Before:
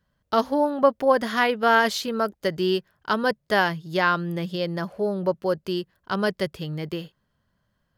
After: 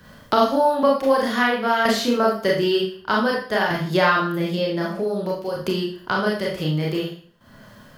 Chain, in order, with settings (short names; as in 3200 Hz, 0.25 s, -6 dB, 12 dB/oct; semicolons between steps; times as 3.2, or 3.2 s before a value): 4.34–6.61 compressor 3:1, threshold -30 dBFS, peak gain reduction 10 dB; tremolo saw down 0.54 Hz, depth 75%; Schroeder reverb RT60 0.39 s, combs from 26 ms, DRR -4 dB; three-band squash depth 70%; gain +3 dB